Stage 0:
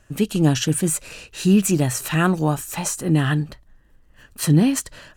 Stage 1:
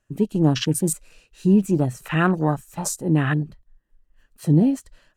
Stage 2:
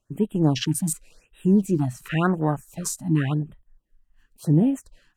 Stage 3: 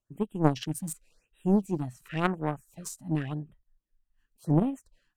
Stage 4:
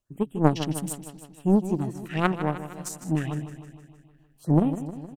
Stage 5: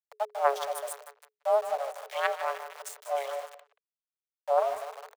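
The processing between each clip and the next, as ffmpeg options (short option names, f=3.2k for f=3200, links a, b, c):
-af "afwtdn=0.0355,equalizer=f=63:w=1.2:g=-9"
-af "afftfilt=real='re*(1-between(b*sr/1024,410*pow(5600/410,0.5+0.5*sin(2*PI*0.91*pts/sr))/1.41,410*pow(5600/410,0.5+0.5*sin(2*PI*0.91*pts/sr))*1.41))':imag='im*(1-between(b*sr/1024,410*pow(5600/410,0.5+0.5*sin(2*PI*0.91*pts/sr))/1.41,410*pow(5600/410,0.5+0.5*sin(2*PI*0.91*pts/sr))*1.41))':win_size=1024:overlap=0.75,volume=-2dB"
-af "aeval=exprs='0.447*(cos(1*acos(clip(val(0)/0.447,-1,1)))-cos(1*PI/2))+0.112*(cos(3*acos(clip(val(0)/0.447,-1,1)))-cos(3*PI/2))+0.00501*(cos(6*acos(clip(val(0)/0.447,-1,1)))-cos(6*PI/2))+0.00398*(cos(8*acos(clip(val(0)/0.447,-1,1)))-cos(8*PI/2))':c=same"
-af "aecho=1:1:155|310|465|620|775|930|1085:0.251|0.151|0.0904|0.0543|0.0326|0.0195|0.0117,volume=3.5dB"
-filter_complex "[0:a]aeval=exprs='val(0)*gte(abs(val(0)),0.0224)':c=same,afreqshift=420,asplit=2[a][b];[b]adelay=180,highpass=300,lowpass=3.4k,asoftclip=type=hard:threshold=-15.5dB,volume=-17dB[c];[a][c]amix=inputs=2:normalize=0,volume=-5dB"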